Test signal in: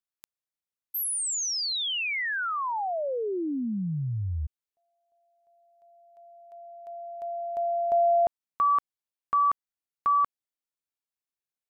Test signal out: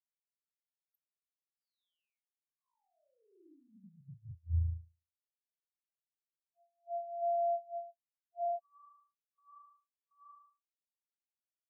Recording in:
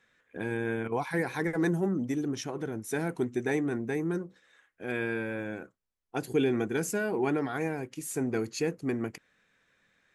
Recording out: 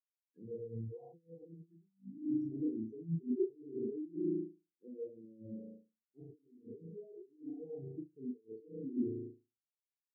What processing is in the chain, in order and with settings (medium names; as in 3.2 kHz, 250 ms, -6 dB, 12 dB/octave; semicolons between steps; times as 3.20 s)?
on a send: flutter echo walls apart 6.2 m, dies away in 1.2 s; on the sum: compressor with a negative ratio -31 dBFS, ratio -0.5; peak limiter -26.5 dBFS; touch-sensitive phaser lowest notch 440 Hz, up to 1.8 kHz, full sweep at -32.5 dBFS; spectral contrast expander 4:1; trim +2.5 dB